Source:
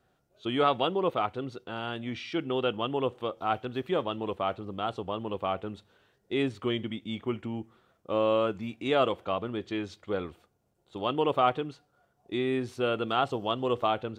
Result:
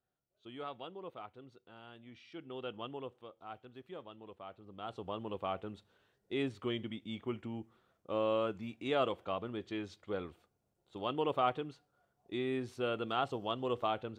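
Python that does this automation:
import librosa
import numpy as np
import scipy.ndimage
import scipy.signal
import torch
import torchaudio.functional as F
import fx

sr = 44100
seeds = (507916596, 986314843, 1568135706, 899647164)

y = fx.gain(x, sr, db=fx.line((2.19, -19.0), (2.84, -12.0), (3.26, -19.0), (4.53, -19.0), (5.07, -7.0)))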